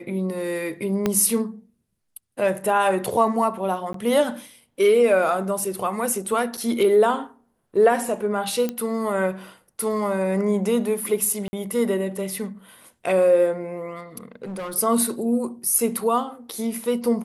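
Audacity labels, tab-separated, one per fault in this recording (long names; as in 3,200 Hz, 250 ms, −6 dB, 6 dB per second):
1.060000	1.060000	click −8 dBFS
3.930000	3.940000	drop-out 13 ms
6.570000	6.580000	drop-out 5.3 ms
8.690000	8.690000	click −13 dBFS
11.480000	11.530000	drop-out 50 ms
14.320000	14.740000	clipping −28 dBFS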